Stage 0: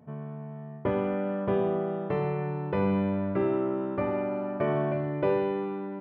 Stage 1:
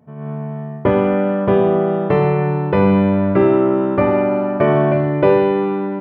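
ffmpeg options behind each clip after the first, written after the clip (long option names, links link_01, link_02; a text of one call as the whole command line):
ffmpeg -i in.wav -af "dynaudnorm=framelen=150:gausssize=3:maxgain=12.5dB,volume=1.5dB" out.wav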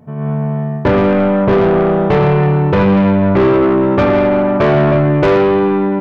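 ffmpeg -i in.wav -af "lowshelf=frequency=72:gain=10,asoftclip=type=tanh:threshold=-15.5dB,volume=8dB" out.wav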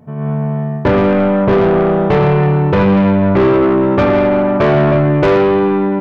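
ffmpeg -i in.wav -af anull out.wav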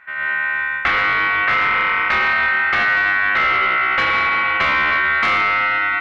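ffmpeg -i in.wav -af "acompressor=threshold=-12dB:ratio=6,aeval=exprs='val(0)*sin(2*PI*1700*n/s)':channel_layout=same" out.wav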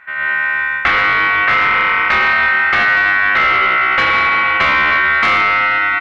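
ffmpeg -i in.wav -filter_complex "[0:a]asplit=2[link_01][link_02];[link_02]adelay=80,highpass=300,lowpass=3400,asoftclip=type=hard:threshold=-16dB,volume=-26dB[link_03];[link_01][link_03]amix=inputs=2:normalize=0,volume=4dB" out.wav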